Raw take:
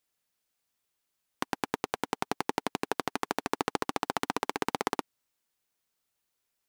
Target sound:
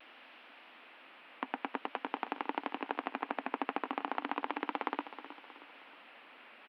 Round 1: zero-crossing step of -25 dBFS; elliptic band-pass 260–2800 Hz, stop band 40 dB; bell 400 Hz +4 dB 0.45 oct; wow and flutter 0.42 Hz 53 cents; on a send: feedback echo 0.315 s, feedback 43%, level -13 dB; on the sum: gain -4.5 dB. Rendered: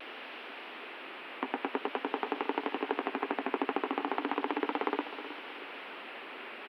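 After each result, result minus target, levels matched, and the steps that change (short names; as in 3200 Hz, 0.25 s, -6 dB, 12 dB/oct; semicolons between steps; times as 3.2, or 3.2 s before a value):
zero-crossing step: distortion +9 dB; 500 Hz band +5.5 dB
change: zero-crossing step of -36 dBFS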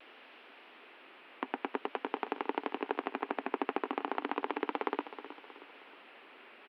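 500 Hz band +4.0 dB
change: bell 400 Hz -6 dB 0.45 oct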